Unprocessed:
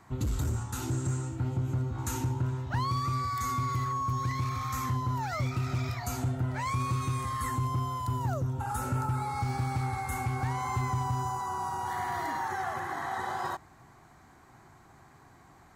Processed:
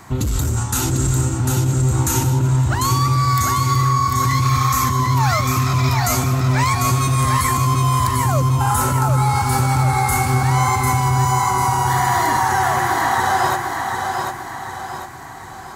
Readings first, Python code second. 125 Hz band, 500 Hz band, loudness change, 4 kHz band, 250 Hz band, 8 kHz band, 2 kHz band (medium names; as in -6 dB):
+14.0 dB, +14.5 dB, +14.5 dB, +18.0 dB, +13.5 dB, +20.0 dB, +16.0 dB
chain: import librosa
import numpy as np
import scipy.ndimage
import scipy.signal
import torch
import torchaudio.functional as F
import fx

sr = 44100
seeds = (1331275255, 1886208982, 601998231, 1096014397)

p1 = fx.high_shelf(x, sr, hz=3800.0, db=7.5)
p2 = fx.over_compress(p1, sr, threshold_db=-32.0, ratio=-0.5)
p3 = p1 + F.gain(torch.from_numpy(p2), 0.0).numpy()
p4 = fx.echo_feedback(p3, sr, ms=747, feedback_pct=45, wet_db=-4.5)
y = F.gain(torch.from_numpy(p4), 7.0).numpy()